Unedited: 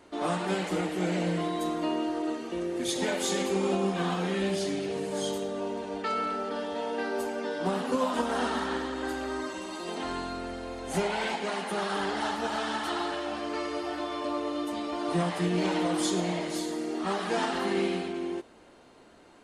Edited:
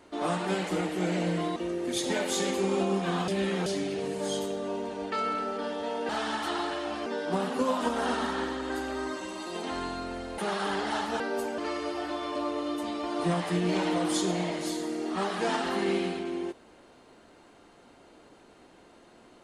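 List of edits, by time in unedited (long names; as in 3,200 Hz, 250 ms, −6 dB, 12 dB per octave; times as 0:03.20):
0:01.56–0:02.48: remove
0:04.20–0:04.58: reverse
0:07.01–0:07.39: swap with 0:12.50–0:13.47
0:10.71–0:11.68: remove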